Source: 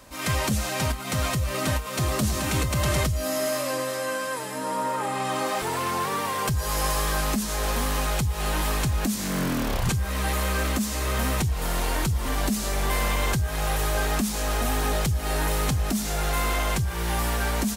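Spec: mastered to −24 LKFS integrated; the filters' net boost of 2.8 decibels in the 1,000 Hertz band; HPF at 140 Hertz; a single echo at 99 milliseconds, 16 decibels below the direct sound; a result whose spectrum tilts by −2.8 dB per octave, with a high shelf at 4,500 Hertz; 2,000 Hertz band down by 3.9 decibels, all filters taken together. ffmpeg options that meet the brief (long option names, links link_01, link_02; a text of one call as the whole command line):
ffmpeg -i in.wav -af "highpass=140,equalizer=frequency=1000:width_type=o:gain=5,equalizer=frequency=2000:width_type=o:gain=-8.5,highshelf=frequency=4500:gain=8,aecho=1:1:99:0.158,volume=0.5dB" out.wav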